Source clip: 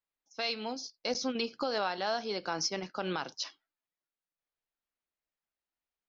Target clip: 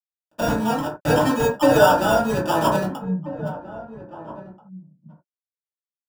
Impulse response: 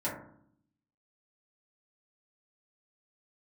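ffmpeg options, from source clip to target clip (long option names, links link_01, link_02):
-filter_complex "[0:a]asettb=1/sr,asplit=3[link_01][link_02][link_03];[link_01]atrim=end=0.674[link_04];[link_02]atrim=start=0.67:end=1.92,asetpts=PTS-STARTPTS,afade=type=in:duration=0.004:curve=qsin,afade=type=out:start_time=1.246:duration=0.004:curve=qsin,aecho=1:1:6.7:0.85,atrim=end_sample=55125[link_05];[link_03]atrim=start=1.916[link_06];[link_04][link_05]acrossfade=duration=0.004:curve1=hsin:curve2=qsin[link_07];[link_07][link_06]acrossfade=duration=0.004:curve1=qsin:curve2=hsin,acrusher=samples=21:mix=1:aa=0.000001,aeval=exprs='sgn(val(0))*max(abs(val(0))-0.00211,0)':channel_layout=same,asplit=3[link_08][link_09][link_10];[link_08]afade=type=out:start_time=2.96:duration=0.02[link_11];[link_09]asuperpass=centerf=170:order=4:qfactor=3.1,afade=type=in:start_time=2.96:duration=0.02,afade=type=out:start_time=3.45:duration=0.02[link_12];[link_10]afade=type=in:start_time=3.45:duration=0.02[link_13];[link_11][link_12][link_13]amix=inputs=3:normalize=0,asplit=2[link_14][link_15];[link_15]adelay=1633,volume=-15dB,highshelf=frequency=4000:gain=-36.7[link_16];[link_14][link_16]amix=inputs=2:normalize=0[link_17];[1:a]atrim=start_sample=2205,atrim=end_sample=4410[link_18];[link_17][link_18]afir=irnorm=-1:irlink=0,volume=8dB"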